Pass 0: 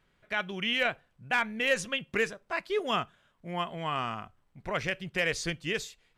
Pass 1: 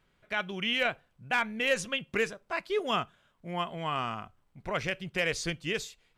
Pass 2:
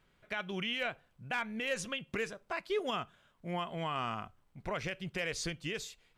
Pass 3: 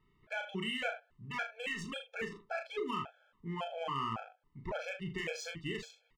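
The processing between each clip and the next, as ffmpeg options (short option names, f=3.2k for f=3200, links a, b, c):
-af "equalizer=f=1.8k:t=o:w=0.23:g=-3"
-af "alimiter=level_in=1dB:limit=-24dB:level=0:latency=1:release=176,volume=-1dB"
-af "aecho=1:1:36|78:0.596|0.251,adynamicsmooth=sensitivity=7:basefreq=3.8k,afftfilt=real='re*gt(sin(2*PI*1.8*pts/sr)*(1-2*mod(floor(b*sr/1024/440),2)),0)':imag='im*gt(sin(2*PI*1.8*pts/sr)*(1-2*mod(floor(b*sr/1024/440),2)),0)':win_size=1024:overlap=0.75"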